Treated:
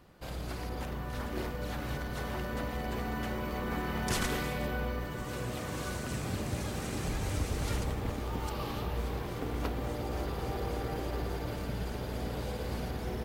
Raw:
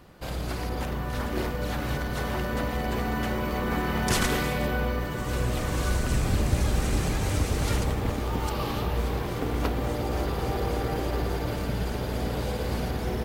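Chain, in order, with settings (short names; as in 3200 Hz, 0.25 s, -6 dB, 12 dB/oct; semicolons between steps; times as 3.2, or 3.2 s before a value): 5.26–7.04 HPF 100 Hz 12 dB/oct; gain -7 dB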